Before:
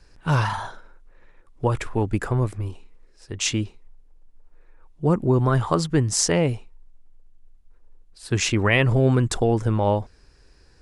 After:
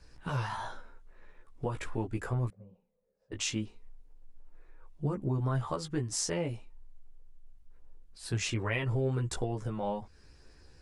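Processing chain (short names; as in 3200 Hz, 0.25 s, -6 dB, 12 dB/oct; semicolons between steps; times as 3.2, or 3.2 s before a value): compressor 2.5:1, threshold -31 dBFS, peak gain reduction 11.5 dB; chorus voices 2, 0.19 Hz, delay 16 ms, depth 2.4 ms; 2.5–3.32 double band-pass 320 Hz, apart 1.4 oct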